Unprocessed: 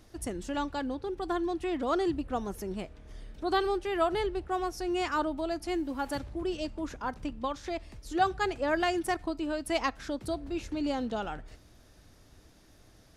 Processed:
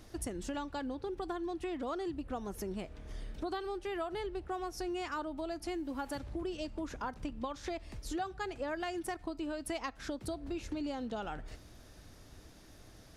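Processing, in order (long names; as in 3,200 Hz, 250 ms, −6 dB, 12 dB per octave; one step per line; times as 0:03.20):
downward compressor 6 to 1, threshold −38 dBFS, peak gain reduction 16.5 dB
level +2.5 dB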